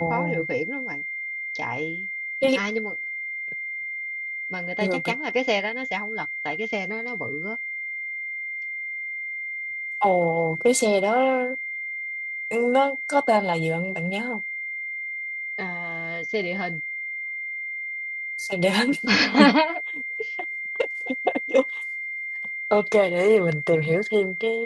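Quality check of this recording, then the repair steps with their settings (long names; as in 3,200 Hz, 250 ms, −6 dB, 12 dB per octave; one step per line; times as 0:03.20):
whistle 2,100 Hz −29 dBFS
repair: notch filter 2,100 Hz, Q 30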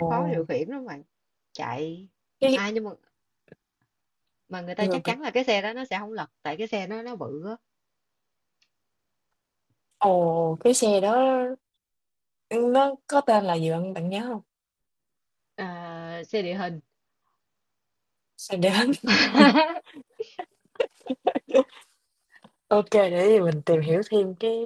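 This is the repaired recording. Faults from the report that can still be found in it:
none of them is left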